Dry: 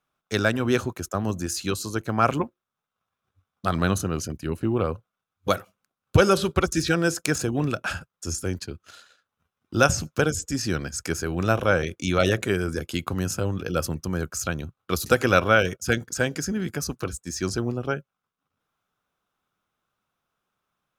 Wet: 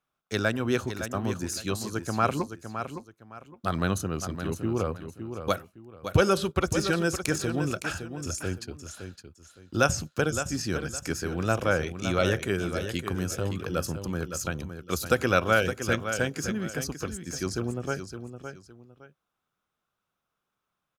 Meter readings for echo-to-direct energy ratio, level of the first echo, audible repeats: -8.5 dB, -9.0 dB, 2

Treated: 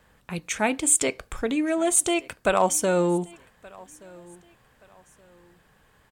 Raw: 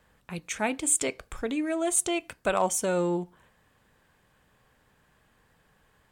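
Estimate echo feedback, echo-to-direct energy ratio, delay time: 31%, -23.5 dB, 1175 ms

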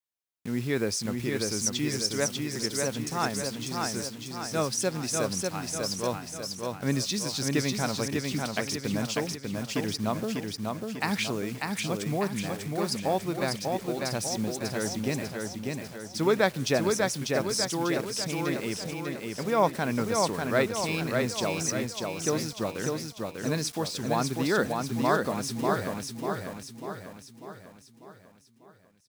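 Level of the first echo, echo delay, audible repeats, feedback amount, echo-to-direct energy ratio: -3.5 dB, 595 ms, 6, 50%, -2.5 dB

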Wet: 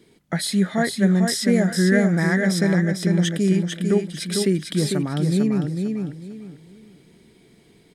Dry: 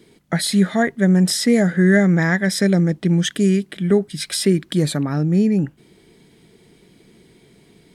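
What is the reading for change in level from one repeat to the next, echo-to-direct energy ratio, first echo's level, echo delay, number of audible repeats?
-11.5 dB, -4.5 dB, -5.0 dB, 449 ms, 3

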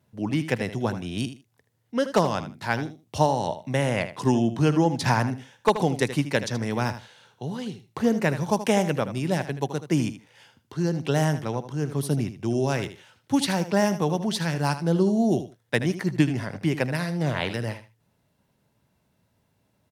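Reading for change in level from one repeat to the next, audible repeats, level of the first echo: -15.0 dB, 2, -12.0 dB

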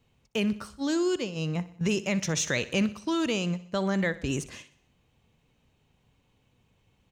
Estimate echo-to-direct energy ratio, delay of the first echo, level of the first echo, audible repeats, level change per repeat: -15.5 dB, 62 ms, -17.0 dB, 4, -5.5 dB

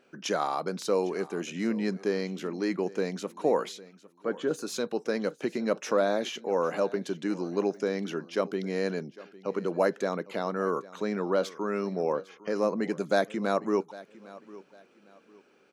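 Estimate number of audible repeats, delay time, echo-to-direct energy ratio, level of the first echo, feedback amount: 2, 804 ms, -19.0 dB, -19.5 dB, 29%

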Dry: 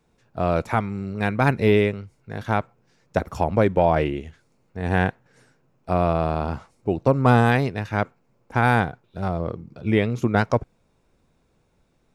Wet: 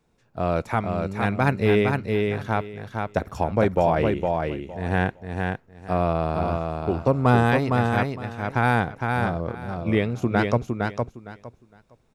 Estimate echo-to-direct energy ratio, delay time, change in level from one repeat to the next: -4.0 dB, 460 ms, -14.0 dB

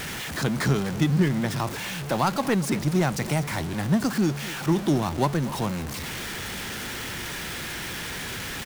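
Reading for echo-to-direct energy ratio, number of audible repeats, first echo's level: -17.0 dB, 1, -17.0 dB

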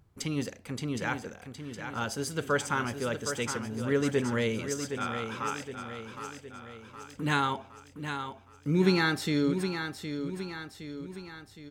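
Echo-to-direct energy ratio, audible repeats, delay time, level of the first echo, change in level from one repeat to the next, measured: -6.5 dB, 5, 765 ms, -8.0 dB, -5.5 dB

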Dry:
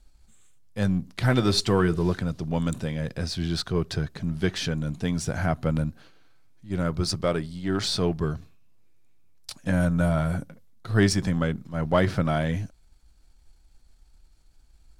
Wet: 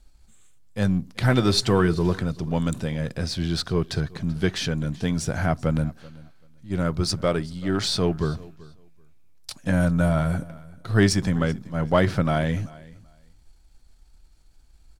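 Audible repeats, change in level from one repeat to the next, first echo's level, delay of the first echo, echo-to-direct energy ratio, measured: 1, no regular repeats, -21.5 dB, 385 ms, -21.5 dB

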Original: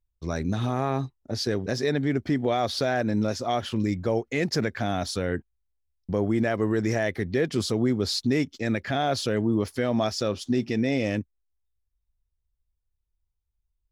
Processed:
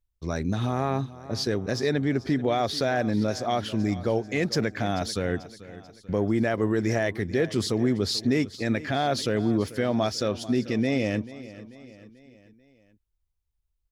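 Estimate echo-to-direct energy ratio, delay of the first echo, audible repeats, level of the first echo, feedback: -15.5 dB, 439 ms, 4, -17.0 dB, 51%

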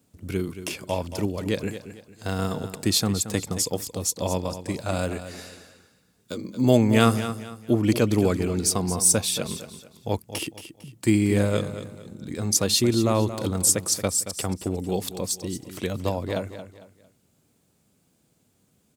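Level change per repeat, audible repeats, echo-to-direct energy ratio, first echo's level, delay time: -9.5 dB, 3, -11.0 dB, -11.5 dB, 226 ms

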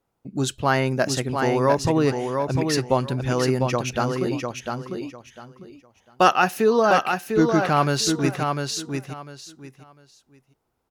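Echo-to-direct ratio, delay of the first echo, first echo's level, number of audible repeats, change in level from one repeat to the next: -5.0 dB, 700 ms, -5.0 dB, 3, -13.0 dB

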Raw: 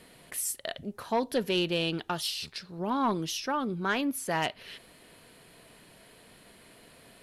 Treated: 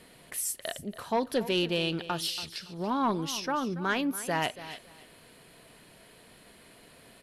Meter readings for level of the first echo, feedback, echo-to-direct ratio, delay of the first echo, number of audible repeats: -15.0 dB, 22%, -15.0 dB, 282 ms, 2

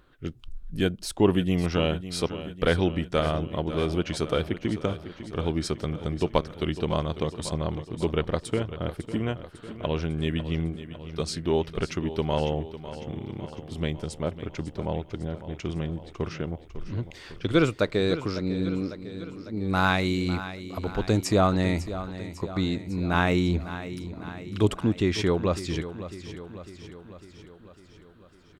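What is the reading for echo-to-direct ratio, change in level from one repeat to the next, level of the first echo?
-11.0 dB, -4.5 dB, -13.0 dB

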